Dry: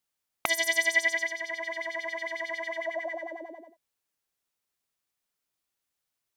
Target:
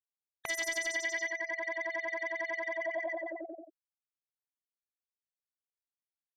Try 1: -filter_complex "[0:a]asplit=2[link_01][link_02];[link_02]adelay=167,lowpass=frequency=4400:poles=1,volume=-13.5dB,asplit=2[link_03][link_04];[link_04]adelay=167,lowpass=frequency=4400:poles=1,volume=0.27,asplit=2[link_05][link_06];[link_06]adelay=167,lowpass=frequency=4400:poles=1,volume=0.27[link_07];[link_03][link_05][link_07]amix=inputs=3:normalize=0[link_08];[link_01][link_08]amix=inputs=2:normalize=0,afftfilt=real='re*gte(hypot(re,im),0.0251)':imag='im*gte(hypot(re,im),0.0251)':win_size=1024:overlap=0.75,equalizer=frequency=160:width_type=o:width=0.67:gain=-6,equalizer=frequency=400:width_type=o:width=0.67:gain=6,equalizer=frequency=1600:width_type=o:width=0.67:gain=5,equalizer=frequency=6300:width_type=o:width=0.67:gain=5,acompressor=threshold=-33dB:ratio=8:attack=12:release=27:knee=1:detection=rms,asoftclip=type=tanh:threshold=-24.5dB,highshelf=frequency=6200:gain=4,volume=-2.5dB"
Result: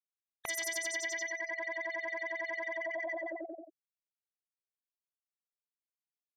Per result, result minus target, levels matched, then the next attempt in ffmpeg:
downward compressor: peak gain reduction +6 dB; 8,000 Hz band +3.5 dB
-filter_complex "[0:a]asplit=2[link_01][link_02];[link_02]adelay=167,lowpass=frequency=4400:poles=1,volume=-13.5dB,asplit=2[link_03][link_04];[link_04]adelay=167,lowpass=frequency=4400:poles=1,volume=0.27,asplit=2[link_05][link_06];[link_06]adelay=167,lowpass=frequency=4400:poles=1,volume=0.27[link_07];[link_03][link_05][link_07]amix=inputs=3:normalize=0[link_08];[link_01][link_08]amix=inputs=2:normalize=0,afftfilt=real='re*gte(hypot(re,im),0.0251)':imag='im*gte(hypot(re,im),0.0251)':win_size=1024:overlap=0.75,equalizer=frequency=160:width_type=o:width=0.67:gain=-6,equalizer=frequency=400:width_type=o:width=0.67:gain=6,equalizer=frequency=1600:width_type=o:width=0.67:gain=5,equalizer=frequency=6300:width_type=o:width=0.67:gain=5,acompressor=threshold=-26dB:ratio=8:attack=12:release=27:knee=1:detection=rms,asoftclip=type=tanh:threshold=-24.5dB,highshelf=frequency=6200:gain=4,volume=-2.5dB"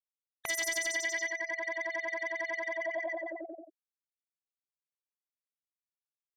8,000 Hz band +3.5 dB
-filter_complex "[0:a]asplit=2[link_01][link_02];[link_02]adelay=167,lowpass=frequency=4400:poles=1,volume=-13.5dB,asplit=2[link_03][link_04];[link_04]adelay=167,lowpass=frequency=4400:poles=1,volume=0.27,asplit=2[link_05][link_06];[link_06]adelay=167,lowpass=frequency=4400:poles=1,volume=0.27[link_07];[link_03][link_05][link_07]amix=inputs=3:normalize=0[link_08];[link_01][link_08]amix=inputs=2:normalize=0,afftfilt=real='re*gte(hypot(re,im),0.0251)':imag='im*gte(hypot(re,im),0.0251)':win_size=1024:overlap=0.75,equalizer=frequency=160:width_type=o:width=0.67:gain=-6,equalizer=frequency=400:width_type=o:width=0.67:gain=6,equalizer=frequency=1600:width_type=o:width=0.67:gain=5,equalizer=frequency=6300:width_type=o:width=0.67:gain=5,acompressor=threshold=-26dB:ratio=8:attack=12:release=27:knee=1:detection=rms,asoftclip=type=tanh:threshold=-24.5dB,highshelf=frequency=6200:gain=-4.5,volume=-2.5dB"

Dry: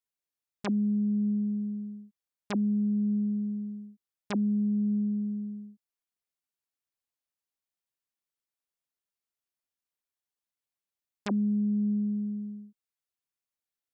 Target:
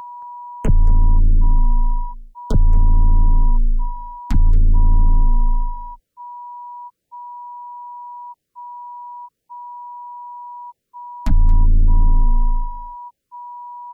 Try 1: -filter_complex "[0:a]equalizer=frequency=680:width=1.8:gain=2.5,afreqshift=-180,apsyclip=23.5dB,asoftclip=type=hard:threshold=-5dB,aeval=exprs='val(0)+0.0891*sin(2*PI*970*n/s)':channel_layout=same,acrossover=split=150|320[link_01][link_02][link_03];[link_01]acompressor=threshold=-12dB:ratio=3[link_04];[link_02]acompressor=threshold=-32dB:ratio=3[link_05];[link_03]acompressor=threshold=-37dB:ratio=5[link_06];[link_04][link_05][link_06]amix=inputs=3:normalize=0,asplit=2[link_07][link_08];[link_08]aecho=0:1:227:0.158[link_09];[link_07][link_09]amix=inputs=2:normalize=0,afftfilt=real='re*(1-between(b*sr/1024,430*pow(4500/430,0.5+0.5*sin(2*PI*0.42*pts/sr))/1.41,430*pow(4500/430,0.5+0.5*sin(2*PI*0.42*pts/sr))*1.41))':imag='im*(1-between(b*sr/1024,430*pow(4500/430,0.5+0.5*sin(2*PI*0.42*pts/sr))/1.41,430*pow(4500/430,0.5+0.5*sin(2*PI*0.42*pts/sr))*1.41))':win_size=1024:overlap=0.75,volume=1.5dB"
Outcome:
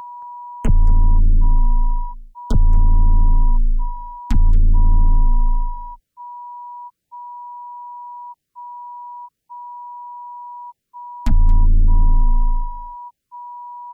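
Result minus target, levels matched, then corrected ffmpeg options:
500 Hz band −3.5 dB
-filter_complex "[0:a]equalizer=frequency=680:width=1.8:gain=10.5,afreqshift=-180,apsyclip=23.5dB,asoftclip=type=hard:threshold=-5dB,aeval=exprs='val(0)+0.0891*sin(2*PI*970*n/s)':channel_layout=same,acrossover=split=150|320[link_01][link_02][link_03];[link_01]acompressor=threshold=-12dB:ratio=3[link_04];[link_02]acompressor=threshold=-32dB:ratio=3[link_05];[link_03]acompressor=threshold=-37dB:ratio=5[link_06];[link_04][link_05][link_06]amix=inputs=3:normalize=0,asplit=2[link_07][link_08];[link_08]aecho=0:1:227:0.158[link_09];[link_07][link_09]amix=inputs=2:normalize=0,afftfilt=real='re*(1-between(b*sr/1024,430*pow(4500/430,0.5+0.5*sin(2*PI*0.42*pts/sr))/1.41,430*pow(4500/430,0.5+0.5*sin(2*PI*0.42*pts/sr))*1.41))':imag='im*(1-between(b*sr/1024,430*pow(4500/430,0.5+0.5*sin(2*PI*0.42*pts/sr))/1.41,430*pow(4500/430,0.5+0.5*sin(2*PI*0.42*pts/sr))*1.41))':win_size=1024:overlap=0.75,volume=1.5dB"

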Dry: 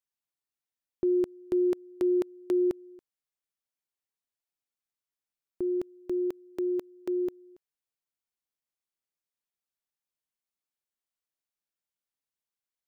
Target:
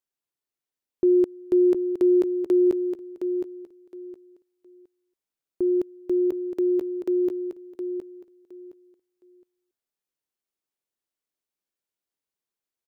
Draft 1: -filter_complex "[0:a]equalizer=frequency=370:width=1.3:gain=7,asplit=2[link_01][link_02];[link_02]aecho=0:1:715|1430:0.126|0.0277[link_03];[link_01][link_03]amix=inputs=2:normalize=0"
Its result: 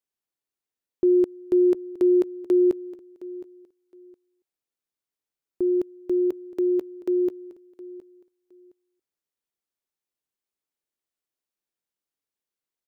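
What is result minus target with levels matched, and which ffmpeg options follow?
echo-to-direct −10 dB
-filter_complex "[0:a]equalizer=frequency=370:width=1.3:gain=7,asplit=2[link_01][link_02];[link_02]aecho=0:1:715|1430|2145:0.398|0.0876|0.0193[link_03];[link_01][link_03]amix=inputs=2:normalize=0"

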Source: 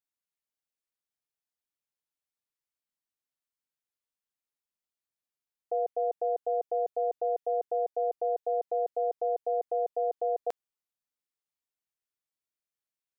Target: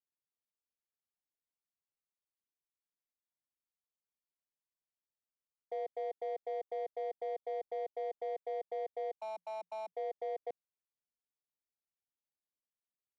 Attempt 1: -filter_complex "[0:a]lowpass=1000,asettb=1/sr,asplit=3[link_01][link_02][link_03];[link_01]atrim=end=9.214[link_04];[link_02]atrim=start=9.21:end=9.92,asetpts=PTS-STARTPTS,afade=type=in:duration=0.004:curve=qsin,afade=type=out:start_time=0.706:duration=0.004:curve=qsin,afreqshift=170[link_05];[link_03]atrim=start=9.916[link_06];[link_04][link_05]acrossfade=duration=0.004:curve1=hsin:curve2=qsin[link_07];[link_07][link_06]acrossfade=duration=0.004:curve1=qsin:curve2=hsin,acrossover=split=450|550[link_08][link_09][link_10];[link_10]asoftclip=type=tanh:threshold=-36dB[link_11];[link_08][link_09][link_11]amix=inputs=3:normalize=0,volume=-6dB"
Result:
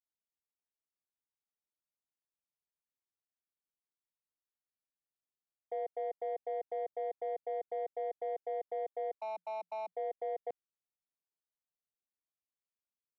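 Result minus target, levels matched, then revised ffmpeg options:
soft clipping: distortion −4 dB
-filter_complex "[0:a]lowpass=1000,asettb=1/sr,asplit=3[link_01][link_02][link_03];[link_01]atrim=end=9.214[link_04];[link_02]atrim=start=9.21:end=9.92,asetpts=PTS-STARTPTS,afade=type=in:duration=0.004:curve=qsin,afade=type=out:start_time=0.706:duration=0.004:curve=qsin,afreqshift=170[link_05];[link_03]atrim=start=9.916[link_06];[link_04][link_05]acrossfade=duration=0.004:curve1=hsin:curve2=qsin[link_07];[link_07][link_06]acrossfade=duration=0.004:curve1=qsin:curve2=hsin,acrossover=split=450|550[link_08][link_09][link_10];[link_10]asoftclip=type=tanh:threshold=-42dB[link_11];[link_08][link_09][link_11]amix=inputs=3:normalize=0,volume=-6dB"

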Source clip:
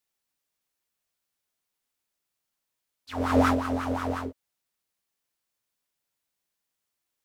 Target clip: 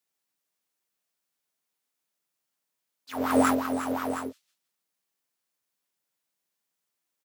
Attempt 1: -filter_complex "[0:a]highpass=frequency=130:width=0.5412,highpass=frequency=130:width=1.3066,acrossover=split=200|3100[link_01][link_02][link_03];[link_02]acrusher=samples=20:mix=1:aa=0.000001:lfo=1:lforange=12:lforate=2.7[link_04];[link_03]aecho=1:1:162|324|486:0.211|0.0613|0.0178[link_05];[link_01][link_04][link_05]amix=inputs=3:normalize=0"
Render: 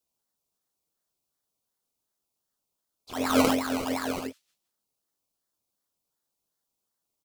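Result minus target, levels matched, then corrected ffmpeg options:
sample-and-hold swept by an LFO: distortion +17 dB
-filter_complex "[0:a]highpass=frequency=130:width=0.5412,highpass=frequency=130:width=1.3066,acrossover=split=200|3100[link_01][link_02][link_03];[link_02]acrusher=samples=4:mix=1:aa=0.000001:lfo=1:lforange=2.4:lforate=2.7[link_04];[link_03]aecho=1:1:162|324|486:0.211|0.0613|0.0178[link_05];[link_01][link_04][link_05]amix=inputs=3:normalize=0"

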